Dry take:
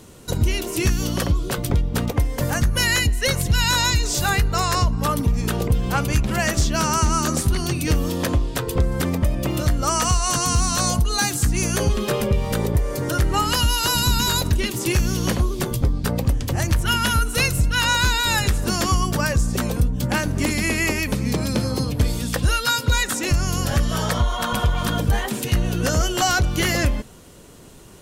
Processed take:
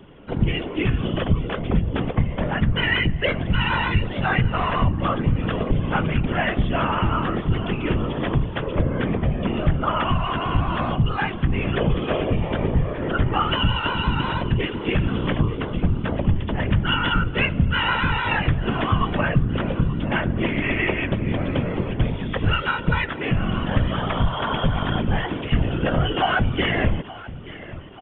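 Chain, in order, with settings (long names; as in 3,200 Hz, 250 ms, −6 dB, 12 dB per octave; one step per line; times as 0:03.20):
Chebyshev low-pass filter 3,400 Hz, order 8
on a send: repeating echo 879 ms, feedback 50%, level −17 dB
on the sum: random phases in short frames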